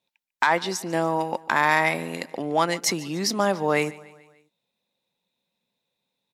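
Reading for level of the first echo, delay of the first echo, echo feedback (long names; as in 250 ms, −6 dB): −20.5 dB, 146 ms, 53%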